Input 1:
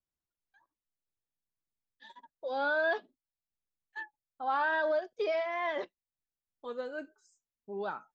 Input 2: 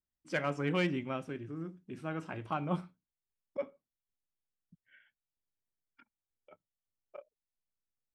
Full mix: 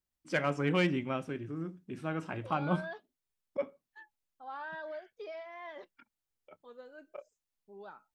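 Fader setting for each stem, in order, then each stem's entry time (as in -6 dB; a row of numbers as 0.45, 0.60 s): -12.5, +2.5 dB; 0.00, 0.00 s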